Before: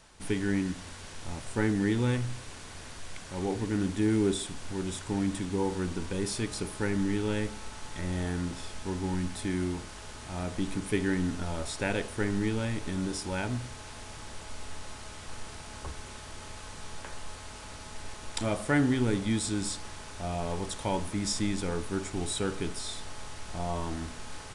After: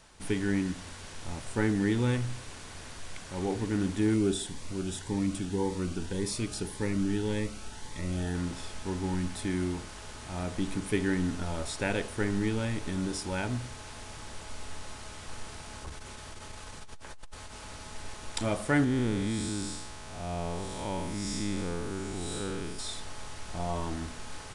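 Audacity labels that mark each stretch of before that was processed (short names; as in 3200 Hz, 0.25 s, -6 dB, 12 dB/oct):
4.140000	8.350000	cascading phaser rising 1.8 Hz
15.760000	17.630000	core saturation saturates under 77 Hz
18.840000	22.790000	time blur width 0.204 s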